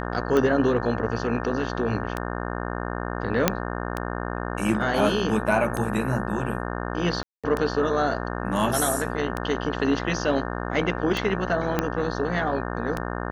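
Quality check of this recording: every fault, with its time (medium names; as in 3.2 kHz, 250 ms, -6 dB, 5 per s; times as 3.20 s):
buzz 60 Hz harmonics 30 -30 dBFS
tick 33 1/3 rpm -13 dBFS
3.48 s: pop -2 dBFS
7.23–7.44 s: dropout 206 ms
11.79 s: pop -8 dBFS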